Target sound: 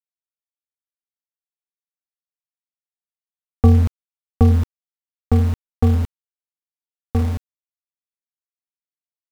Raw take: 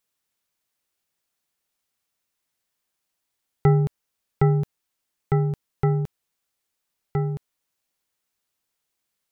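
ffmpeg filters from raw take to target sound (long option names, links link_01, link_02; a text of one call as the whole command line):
ffmpeg -i in.wav -af "asetrate=25476,aresample=44100,atempo=1.73107,aeval=exprs='val(0)*gte(abs(val(0)),0.0251)':channel_layout=same,volume=6dB" out.wav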